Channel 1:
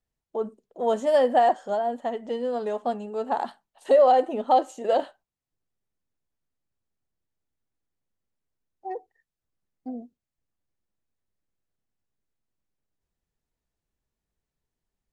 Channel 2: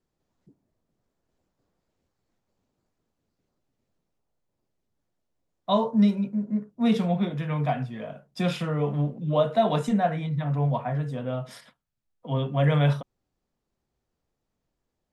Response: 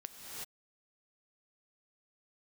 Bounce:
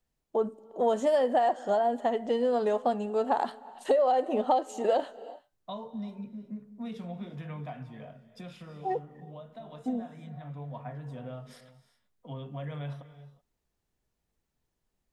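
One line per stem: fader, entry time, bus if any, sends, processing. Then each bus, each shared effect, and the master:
+2.5 dB, 0.00 s, send -19.5 dB, dry
-10.0 dB, 0.00 s, send -9 dB, compressor 4:1, threshold -28 dBFS, peak gain reduction 10.5 dB; auto duck -10 dB, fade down 1.05 s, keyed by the first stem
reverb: on, pre-delay 3 ms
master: compressor 6:1, threshold -22 dBFS, peak gain reduction 11 dB

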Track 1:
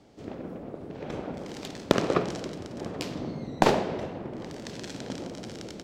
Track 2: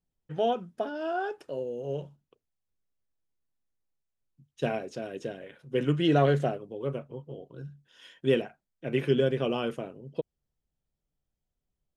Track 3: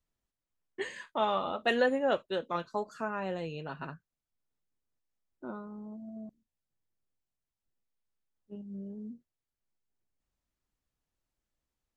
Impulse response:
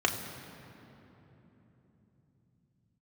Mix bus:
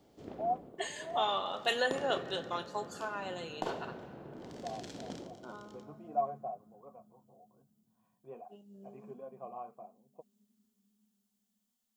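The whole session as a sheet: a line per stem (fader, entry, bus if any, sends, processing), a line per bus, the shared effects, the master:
-8.5 dB, 0.00 s, send -22.5 dB, auto duck -13 dB, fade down 0.25 s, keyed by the third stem
+2.0 dB, 0.00 s, no send, vocal tract filter a; flange 1.3 Hz, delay 3.5 ms, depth 4.8 ms, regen -35%
-5.0 dB, 0.00 s, send -15 dB, tilt +4 dB/oct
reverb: on, RT60 3.6 s, pre-delay 3 ms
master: dry

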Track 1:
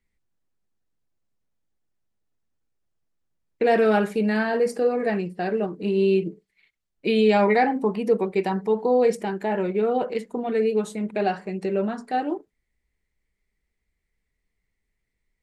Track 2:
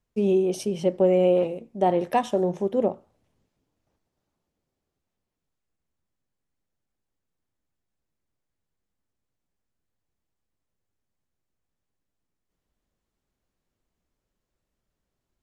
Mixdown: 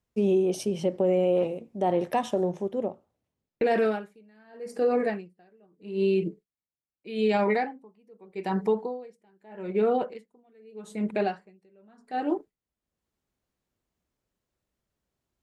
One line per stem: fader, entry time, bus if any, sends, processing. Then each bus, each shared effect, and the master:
+1.0 dB, 0.00 s, no send, gate with hold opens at -38 dBFS; dB-linear tremolo 0.81 Hz, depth 36 dB
-1.0 dB, 0.00 s, no send, HPF 44 Hz; auto duck -14 dB, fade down 1.30 s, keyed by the first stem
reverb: off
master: limiter -16 dBFS, peak gain reduction 8 dB

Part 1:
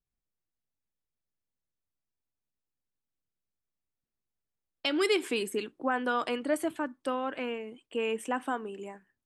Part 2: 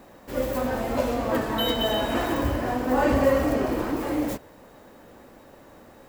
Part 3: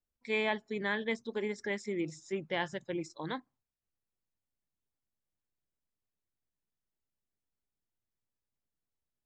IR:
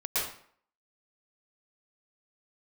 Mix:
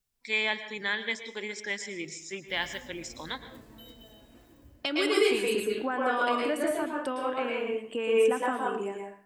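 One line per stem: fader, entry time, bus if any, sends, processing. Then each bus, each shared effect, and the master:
+1.5 dB, 0.00 s, bus A, send -7.5 dB, dry
-19.0 dB, 2.20 s, bus A, no send, bell 1000 Hz -13 dB 2.7 oct; auto duck -10 dB, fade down 1.10 s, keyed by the first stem
+2.0 dB, 0.00 s, no bus, send -18.5 dB, tilt shelf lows -8.5 dB, about 1400 Hz
bus A: 0.0 dB, compressor 4:1, threshold -35 dBFS, peak gain reduction 12 dB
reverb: on, RT60 0.55 s, pre-delay 0.107 s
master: dry

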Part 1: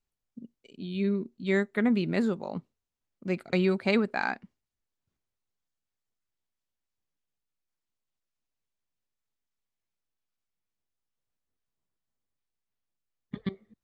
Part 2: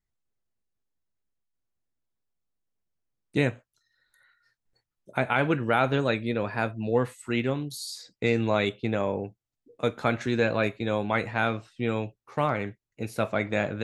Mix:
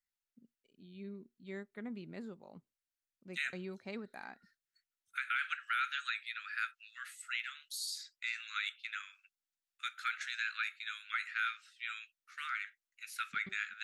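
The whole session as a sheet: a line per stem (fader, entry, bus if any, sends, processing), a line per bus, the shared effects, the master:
-19.0 dB, 0.00 s, no send, dry
-3.0 dB, 0.00 s, no send, steep high-pass 1300 Hz 96 dB/oct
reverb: off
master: limiter -25 dBFS, peak gain reduction 7 dB

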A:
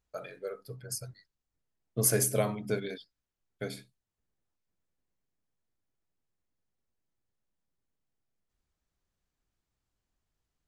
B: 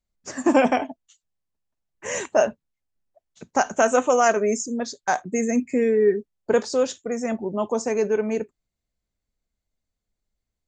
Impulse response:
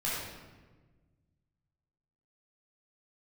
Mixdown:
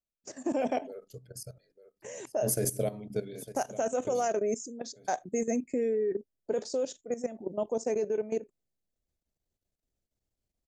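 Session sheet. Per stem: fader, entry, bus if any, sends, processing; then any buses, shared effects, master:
+0.5 dB, 0.45 s, no send, echo send -15.5 dB, dry
-2.5 dB, 0.00 s, no send, no echo send, low shelf 170 Hz -11 dB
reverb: off
echo: echo 0.897 s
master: EQ curve 110 Hz 0 dB, 620 Hz +2 dB, 1100 Hz -11 dB, 6000 Hz -2 dB; level quantiser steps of 14 dB

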